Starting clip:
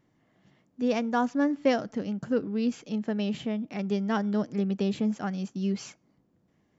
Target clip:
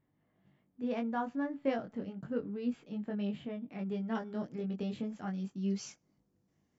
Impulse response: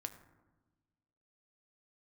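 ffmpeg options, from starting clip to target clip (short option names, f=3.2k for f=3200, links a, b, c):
-af "lowshelf=f=140:g=4.5,flanger=delay=20:depth=2.2:speed=0.33,asetnsamples=n=441:p=0,asendcmd='4.15 equalizer g -6;5.7 equalizer g 7.5',equalizer=f=6k:w=1.4:g=-14.5,volume=-6dB"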